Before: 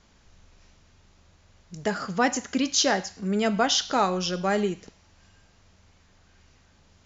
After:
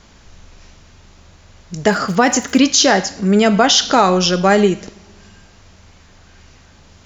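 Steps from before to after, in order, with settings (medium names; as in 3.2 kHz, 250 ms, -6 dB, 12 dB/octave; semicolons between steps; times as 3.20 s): on a send at -23.5 dB: reverberation RT60 1.4 s, pre-delay 3 ms; 1.85–2.57 s: on the sum: crackle 62 per s -> 180 per s -38 dBFS; loudness maximiser +14 dB; trim -1 dB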